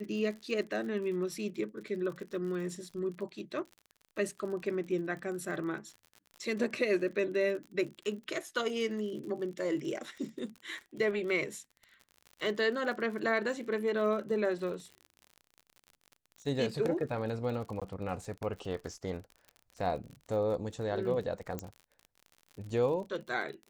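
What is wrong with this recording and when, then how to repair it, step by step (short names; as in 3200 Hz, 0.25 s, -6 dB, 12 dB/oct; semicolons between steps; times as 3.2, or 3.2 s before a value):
crackle 47/s -41 dBFS
17.8–17.82 gap 16 ms
21.59 pop -21 dBFS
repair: de-click; interpolate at 17.8, 16 ms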